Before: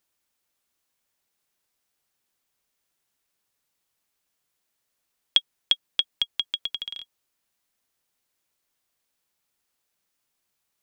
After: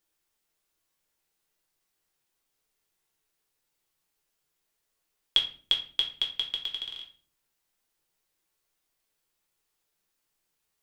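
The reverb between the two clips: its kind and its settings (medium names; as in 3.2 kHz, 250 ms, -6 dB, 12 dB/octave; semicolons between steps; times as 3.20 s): simulated room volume 35 m³, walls mixed, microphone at 0.6 m; trim -4 dB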